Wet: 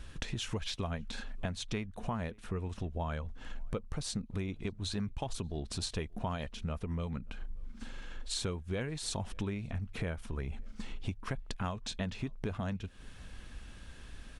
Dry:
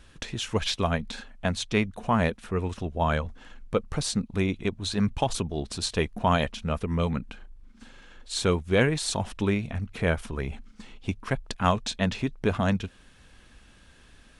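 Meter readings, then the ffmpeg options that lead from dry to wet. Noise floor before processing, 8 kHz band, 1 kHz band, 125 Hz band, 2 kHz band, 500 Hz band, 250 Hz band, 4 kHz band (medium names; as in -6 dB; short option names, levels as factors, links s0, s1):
-55 dBFS, -8.0 dB, -13.5 dB, -8.5 dB, -13.0 dB, -13.0 dB, -11.0 dB, -8.5 dB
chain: -filter_complex "[0:a]lowshelf=f=110:g=8,acompressor=threshold=0.0178:ratio=6,asplit=2[s0][s1];[s1]adelay=583.1,volume=0.0398,highshelf=f=4000:g=-13.1[s2];[s0][s2]amix=inputs=2:normalize=0,volume=1.12"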